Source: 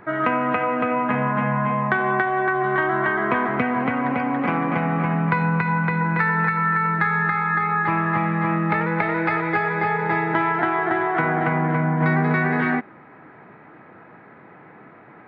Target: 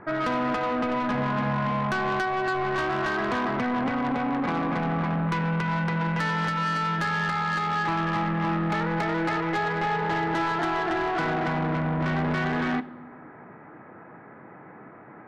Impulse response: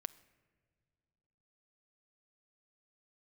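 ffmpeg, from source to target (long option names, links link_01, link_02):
-filter_complex "[0:a]lowpass=1800,asoftclip=type=tanh:threshold=-22.5dB[link_01];[1:a]atrim=start_sample=2205,asetrate=74970,aresample=44100[link_02];[link_01][link_02]afir=irnorm=-1:irlink=0,volume=8dB"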